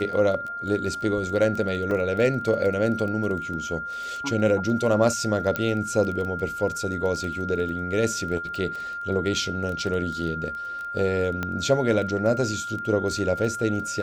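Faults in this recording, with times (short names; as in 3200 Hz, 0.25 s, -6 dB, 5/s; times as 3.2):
crackle 14/s -29 dBFS
tone 1400 Hz -30 dBFS
1.91 gap 2.4 ms
5.56 pop -11 dBFS
11.43 pop -14 dBFS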